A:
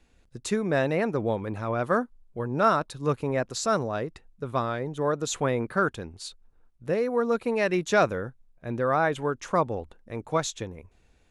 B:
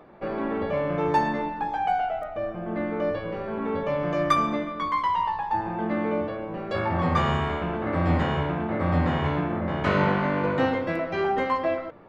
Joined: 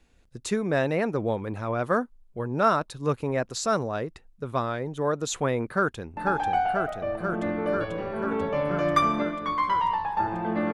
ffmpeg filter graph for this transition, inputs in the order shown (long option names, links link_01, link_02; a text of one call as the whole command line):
ffmpeg -i cue0.wav -i cue1.wav -filter_complex "[0:a]apad=whole_dur=10.73,atrim=end=10.73,atrim=end=6.172[link_01];[1:a]atrim=start=1.508:end=6.07[link_02];[link_01][link_02]acrossfade=duration=0.004:curve1=hsin:curve2=hsin,asplit=2[link_03][link_04];[link_04]afade=type=in:start_time=5.7:duration=0.01,afade=type=out:start_time=6.17:duration=0.01,aecho=0:1:490|980|1470|1960|2450|2940|3430|3920|4410|4900|5390|5880:0.707946|0.566357|0.453085|0.362468|0.289975|0.23198|0.185584|0.148467|0.118774|0.0950189|0.0760151|0.0608121[link_05];[link_03][link_05]amix=inputs=2:normalize=0" out.wav